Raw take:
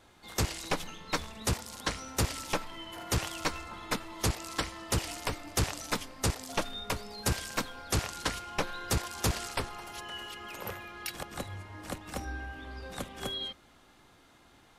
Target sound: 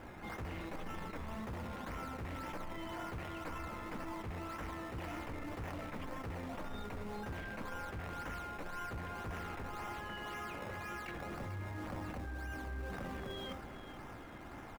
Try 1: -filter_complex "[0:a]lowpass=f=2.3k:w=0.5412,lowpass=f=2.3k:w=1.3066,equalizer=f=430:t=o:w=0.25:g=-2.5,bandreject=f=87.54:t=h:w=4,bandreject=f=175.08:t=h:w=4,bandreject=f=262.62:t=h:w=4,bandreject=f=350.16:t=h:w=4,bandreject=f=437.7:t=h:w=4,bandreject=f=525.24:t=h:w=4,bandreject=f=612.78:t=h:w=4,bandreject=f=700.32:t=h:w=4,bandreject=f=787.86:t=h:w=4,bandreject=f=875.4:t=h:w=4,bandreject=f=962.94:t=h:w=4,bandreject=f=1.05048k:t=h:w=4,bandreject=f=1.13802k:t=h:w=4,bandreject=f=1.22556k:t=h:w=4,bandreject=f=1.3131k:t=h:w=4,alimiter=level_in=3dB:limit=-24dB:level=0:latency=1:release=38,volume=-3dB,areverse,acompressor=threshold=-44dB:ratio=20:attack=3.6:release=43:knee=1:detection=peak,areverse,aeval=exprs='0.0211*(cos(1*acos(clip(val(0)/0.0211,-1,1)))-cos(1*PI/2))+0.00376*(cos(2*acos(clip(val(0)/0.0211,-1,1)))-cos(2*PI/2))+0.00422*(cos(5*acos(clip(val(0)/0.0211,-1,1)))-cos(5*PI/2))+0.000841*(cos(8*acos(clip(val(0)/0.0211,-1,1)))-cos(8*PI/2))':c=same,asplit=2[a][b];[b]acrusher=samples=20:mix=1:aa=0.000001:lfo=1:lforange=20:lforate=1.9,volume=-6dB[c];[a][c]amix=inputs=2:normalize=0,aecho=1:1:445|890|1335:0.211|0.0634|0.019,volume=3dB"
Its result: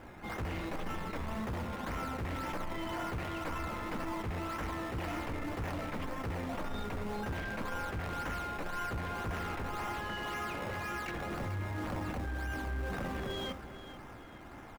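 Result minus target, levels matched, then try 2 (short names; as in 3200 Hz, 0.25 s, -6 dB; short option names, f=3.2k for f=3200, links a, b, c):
compressor: peak gain reduction -7 dB
-filter_complex "[0:a]lowpass=f=2.3k:w=0.5412,lowpass=f=2.3k:w=1.3066,equalizer=f=430:t=o:w=0.25:g=-2.5,bandreject=f=87.54:t=h:w=4,bandreject=f=175.08:t=h:w=4,bandreject=f=262.62:t=h:w=4,bandreject=f=350.16:t=h:w=4,bandreject=f=437.7:t=h:w=4,bandreject=f=525.24:t=h:w=4,bandreject=f=612.78:t=h:w=4,bandreject=f=700.32:t=h:w=4,bandreject=f=787.86:t=h:w=4,bandreject=f=875.4:t=h:w=4,bandreject=f=962.94:t=h:w=4,bandreject=f=1.05048k:t=h:w=4,bandreject=f=1.13802k:t=h:w=4,bandreject=f=1.22556k:t=h:w=4,bandreject=f=1.3131k:t=h:w=4,alimiter=level_in=3dB:limit=-24dB:level=0:latency=1:release=38,volume=-3dB,areverse,acompressor=threshold=-51.5dB:ratio=20:attack=3.6:release=43:knee=1:detection=peak,areverse,aeval=exprs='0.0211*(cos(1*acos(clip(val(0)/0.0211,-1,1)))-cos(1*PI/2))+0.00376*(cos(2*acos(clip(val(0)/0.0211,-1,1)))-cos(2*PI/2))+0.00422*(cos(5*acos(clip(val(0)/0.0211,-1,1)))-cos(5*PI/2))+0.000841*(cos(8*acos(clip(val(0)/0.0211,-1,1)))-cos(8*PI/2))':c=same,asplit=2[a][b];[b]acrusher=samples=20:mix=1:aa=0.000001:lfo=1:lforange=20:lforate=1.9,volume=-6dB[c];[a][c]amix=inputs=2:normalize=0,aecho=1:1:445|890|1335:0.211|0.0634|0.019,volume=3dB"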